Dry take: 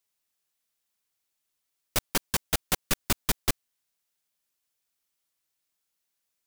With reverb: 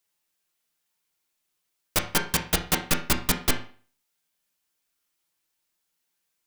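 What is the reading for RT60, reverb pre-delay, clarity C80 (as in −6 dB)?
0.40 s, 6 ms, 15.5 dB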